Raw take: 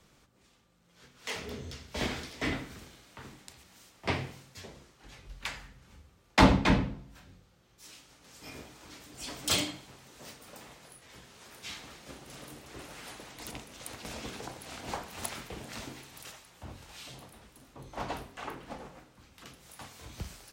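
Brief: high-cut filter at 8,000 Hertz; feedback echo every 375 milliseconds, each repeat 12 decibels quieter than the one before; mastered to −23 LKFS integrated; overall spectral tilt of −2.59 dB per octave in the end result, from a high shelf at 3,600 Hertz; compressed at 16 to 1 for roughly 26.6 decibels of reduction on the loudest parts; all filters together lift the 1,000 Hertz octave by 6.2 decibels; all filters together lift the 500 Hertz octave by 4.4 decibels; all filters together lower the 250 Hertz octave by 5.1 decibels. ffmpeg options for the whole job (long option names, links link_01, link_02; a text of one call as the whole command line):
ffmpeg -i in.wav -af "lowpass=8000,equalizer=frequency=250:width_type=o:gain=-8.5,equalizer=frequency=500:width_type=o:gain=5.5,equalizer=frequency=1000:width_type=o:gain=6,highshelf=frequency=3600:gain=3.5,acompressor=threshold=-39dB:ratio=16,aecho=1:1:375|750|1125:0.251|0.0628|0.0157,volume=22.5dB" out.wav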